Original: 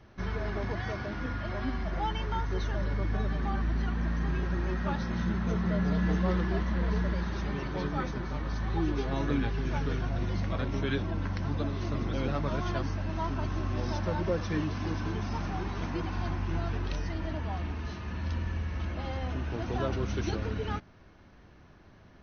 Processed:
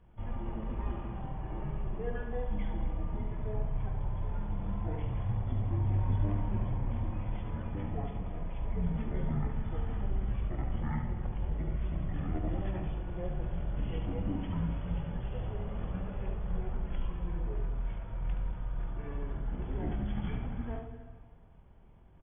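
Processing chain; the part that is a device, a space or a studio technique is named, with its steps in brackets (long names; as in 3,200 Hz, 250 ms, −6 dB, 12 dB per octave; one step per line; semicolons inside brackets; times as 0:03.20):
monster voice (pitch shifter −10.5 semitones; low-shelf EQ 140 Hz +6 dB; single-tap delay 73 ms −7 dB; convolution reverb RT60 1.8 s, pre-delay 10 ms, DRR 5.5 dB)
level −7.5 dB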